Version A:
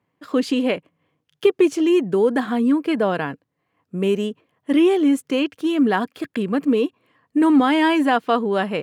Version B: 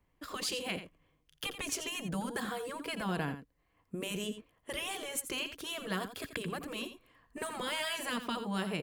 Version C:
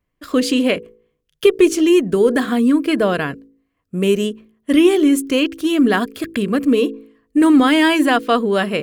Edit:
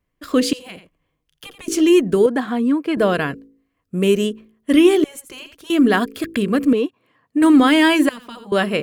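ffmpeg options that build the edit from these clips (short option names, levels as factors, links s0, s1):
-filter_complex "[1:a]asplit=3[s0][s1][s2];[0:a]asplit=2[s3][s4];[2:a]asplit=6[s5][s6][s7][s8][s9][s10];[s5]atrim=end=0.532[s11];[s0]atrim=start=0.528:end=1.682[s12];[s6]atrim=start=1.678:end=2.262[s13];[s3]atrim=start=2.258:end=2.972[s14];[s7]atrim=start=2.968:end=5.042[s15];[s1]atrim=start=5.038:end=5.702[s16];[s8]atrim=start=5.698:end=6.732[s17];[s4]atrim=start=6.728:end=7.422[s18];[s9]atrim=start=7.418:end=8.092[s19];[s2]atrim=start=8.088:end=8.522[s20];[s10]atrim=start=8.518[s21];[s11][s12]acrossfade=d=0.004:c1=hsin:c2=hsin[s22];[s22][s13]acrossfade=d=0.004:c1=hsin:c2=hsin[s23];[s23][s14]acrossfade=d=0.004:c1=hsin:c2=hsin[s24];[s24][s15]acrossfade=d=0.004:c1=hsin:c2=hsin[s25];[s25][s16]acrossfade=d=0.004:c1=hsin:c2=hsin[s26];[s26][s17]acrossfade=d=0.004:c1=hsin:c2=hsin[s27];[s27][s18]acrossfade=d=0.004:c1=hsin:c2=hsin[s28];[s28][s19]acrossfade=d=0.004:c1=hsin:c2=hsin[s29];[s29][s20]acrossfade=d=0.004:c1=hsin:c2=hsin[s30];[s30][s21]acrossfade=d=0.004:c1=hsin:c2=hsin"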